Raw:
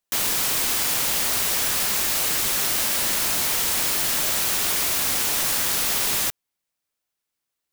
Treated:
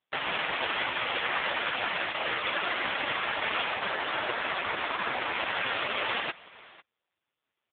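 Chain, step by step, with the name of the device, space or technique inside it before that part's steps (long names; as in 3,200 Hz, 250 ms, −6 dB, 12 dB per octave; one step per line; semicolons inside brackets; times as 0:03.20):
0:03.71–0:05.35: dynamic equaliser 2,900 Hz, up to −4 dB, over −45 dBFS, Q 1.8
satellite phone (band-pass filter 350–3,100 Hz; single-tap delay 501 ms −21.5 dB; level +8 dB; AMR narrowband 4.75 kbit/s 8,000 Hz)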